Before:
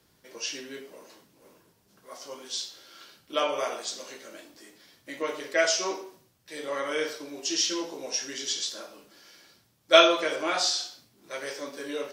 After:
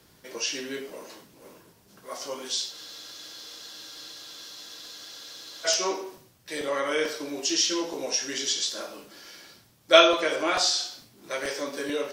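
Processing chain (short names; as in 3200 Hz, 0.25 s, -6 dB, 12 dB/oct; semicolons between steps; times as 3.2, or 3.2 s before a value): in parallel at +2 dB: compressor, threshold -37 dBFS, peak gain reduction 23.5 dB; on the sum: spectral freeze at 2.73, 2.93 s; crackling interface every 0.44 s, samples 128, repeat, from 0.89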